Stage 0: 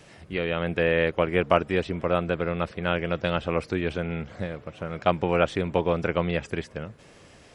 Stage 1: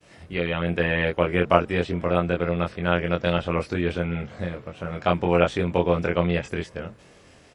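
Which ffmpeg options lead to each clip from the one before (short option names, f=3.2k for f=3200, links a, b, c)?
-filter_complex "[0:a]asplit=2[a][b];[b]adelay=23,volume=-3dB[c];[a][c]amix=inputs=2:normalize=0,agate=range=-33dB:threshold=-46dB:ratio=3:detection=peak"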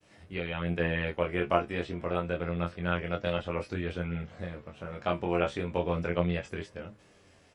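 -af "flanger=delay=9.7:depth=4.8:regen=51:speed=0.29:shape=sinusoidal,volume=-4dB"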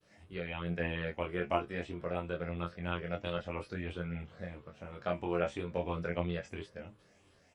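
-af "afftfilt=real='re*pow(10,7/40*sin(2*PI*(0.62*log(max(b,1)*sr/1024/100)/log(2)-(3)*(pts-256)/sr)))':imag='im*pow(10,7/40*sin(2*PI*(0.62*log(max(b,1)*sr/1024/100)/log(2)-(3)*(pts-256)/sr)))':win_size=1024:overlap=0.75,volume=-6dB"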